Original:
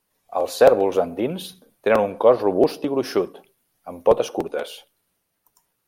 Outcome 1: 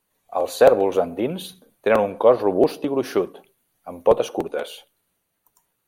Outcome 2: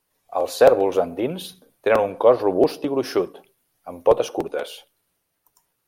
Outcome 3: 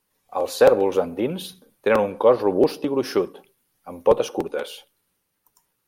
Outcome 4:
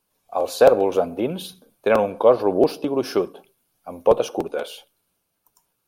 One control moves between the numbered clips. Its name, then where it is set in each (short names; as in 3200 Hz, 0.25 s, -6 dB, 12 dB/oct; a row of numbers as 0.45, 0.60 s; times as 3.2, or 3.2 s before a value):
notch, frequency: 5200, 210, 670, 1900 Hz